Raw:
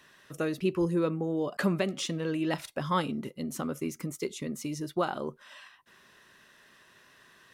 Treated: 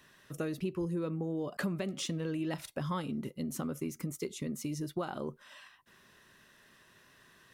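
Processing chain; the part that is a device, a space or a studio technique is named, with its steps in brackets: ASMR close-microphone chain (bass shelf 250 Hz +7.5 dB; compression 4:1, threshold -28 dBFS, peak gain reduction 8.5 dB; treble shelf 8.8 kHz +5.5 dB); trim -4 dB

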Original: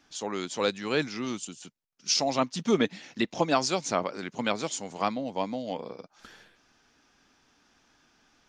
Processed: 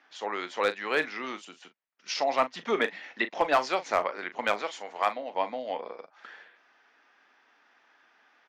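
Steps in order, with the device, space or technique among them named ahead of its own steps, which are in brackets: megaphone (band-pass 570–2500 Hz; peaking EQ 1.9 kHz +5.5 dB 0.32 oct; hard clipper -18.5 dBFS, distortion -20 dB; doubling 39 ms -12.5 dB); 4.62–5.35 s: high-pass 310 Hz 6 dB/octave; trim +4 dB

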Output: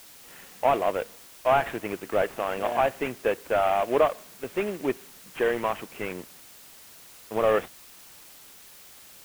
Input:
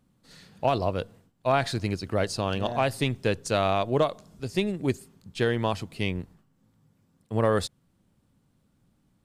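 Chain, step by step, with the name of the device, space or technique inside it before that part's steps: army field radio (band-pass 380–3100 Hz; CVSD coder 16 kbps; white noise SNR 21 dB); trim +5 dB

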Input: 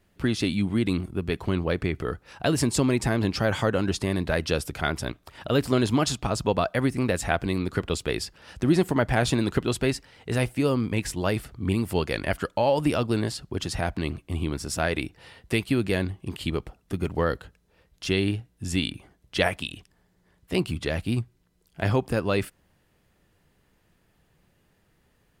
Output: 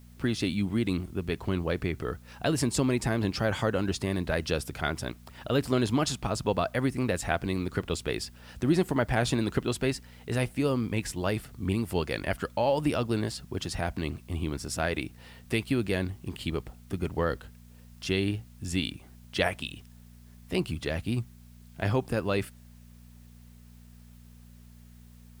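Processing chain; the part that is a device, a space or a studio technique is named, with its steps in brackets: video cassette with head-switching buzz (mains buzz 60 Hz, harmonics 4, -48 dBFS -4 dB/octave; white noise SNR 34 dB); trim -3.5 dB

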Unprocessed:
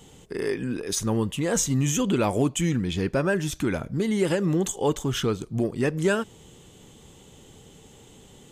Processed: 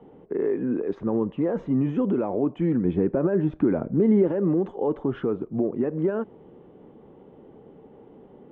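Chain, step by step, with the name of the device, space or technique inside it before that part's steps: DJ mixer with the lows and highs turned down (three-band isolator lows -18 dB, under 210 Hz, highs -24 dB, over 3.3 kHz; peak limiter -21.5 dBFS, peak gain reduction 11 dB); Bessel low-pass 630 Hz, order 2; 2.85–4.28 s: bass shelf 490 Hz +5 dB; trim +7.5 dB

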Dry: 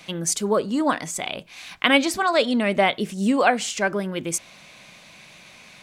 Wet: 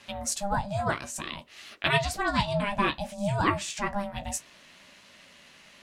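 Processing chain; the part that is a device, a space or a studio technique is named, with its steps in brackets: alien voice (ring modulator 400 Hz; flange 0.59 Hz, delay 9.1 ms, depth 8.3 ms, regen -35%)

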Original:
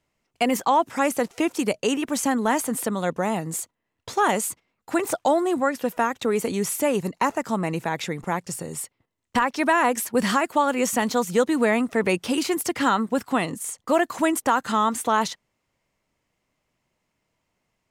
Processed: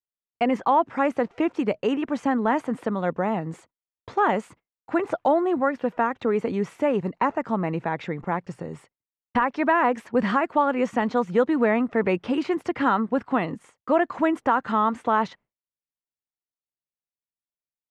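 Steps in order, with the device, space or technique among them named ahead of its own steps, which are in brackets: hearing-loss simulation (low-pass 2 kHz 12 dB/octave; expander -43 dBFS)

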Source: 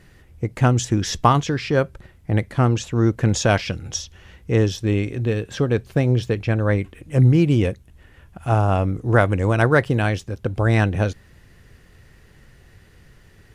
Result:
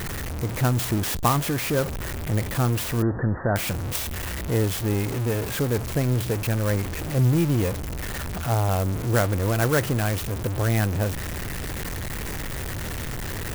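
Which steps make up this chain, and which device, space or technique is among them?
early CD player with a faulty converter (jump at every zero crossing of -17 dBFS; sampling jitter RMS 0.059 ms); 3.02–3.56 s: Chebyshev low-pass 1.9 kHz, order 10; trim -7.5 dB

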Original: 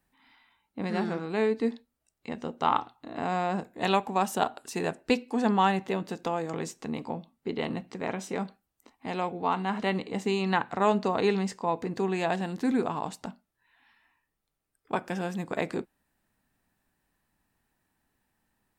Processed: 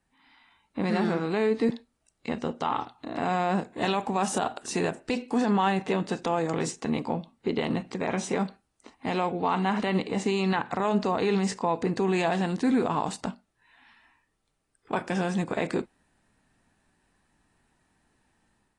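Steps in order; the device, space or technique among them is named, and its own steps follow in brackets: low-bitrate web radio (level rider gain up to 6 dB; peak limiter -16 dBFS, peak gain reduction 11.5 dB; AAC 32 kbps 22.05 kHz)

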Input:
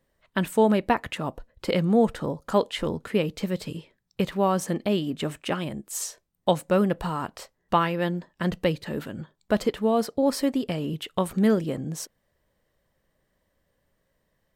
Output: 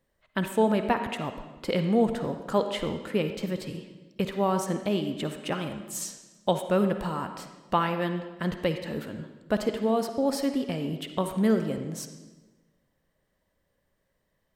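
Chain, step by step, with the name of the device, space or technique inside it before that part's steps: filtered reverb send (on a send: high-pass 180 Hz + low-pass 7 kHz 12 dB/octave + reverberation RT60 1.2 s, pre-delay 47 ms, DRR 7 dB); on the sum: trim -3 dB

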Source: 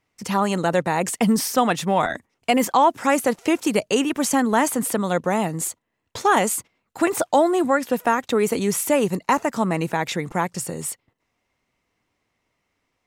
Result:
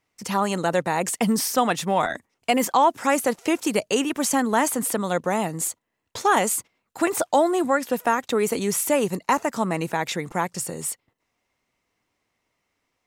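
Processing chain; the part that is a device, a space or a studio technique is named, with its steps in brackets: bass shelf 260 Hz -4 dB; exciter from parts (in parallel at -11 dB: high-pass 3.5 kHz + saturation -25 dBFS, distortion -12 dB); on the sum: trim -1 dB

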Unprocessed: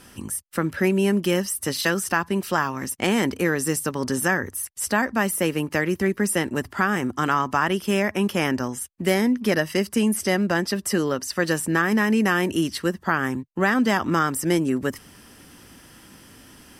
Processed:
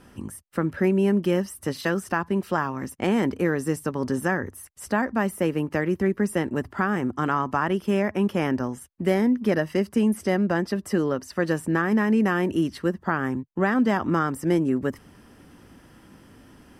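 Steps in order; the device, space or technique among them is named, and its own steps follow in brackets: through cloth (treble shelf 2.2 kHz -13.5 dB)

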